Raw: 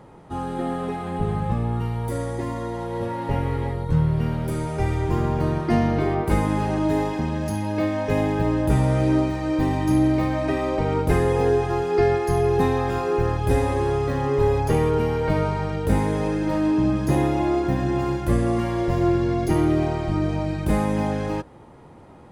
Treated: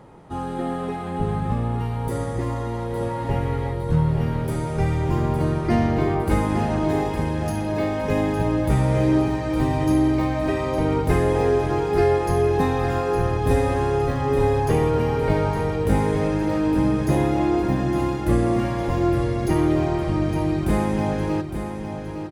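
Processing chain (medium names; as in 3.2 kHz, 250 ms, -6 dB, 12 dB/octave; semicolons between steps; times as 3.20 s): feedback delay 860 ms, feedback 47%, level -8.5 dB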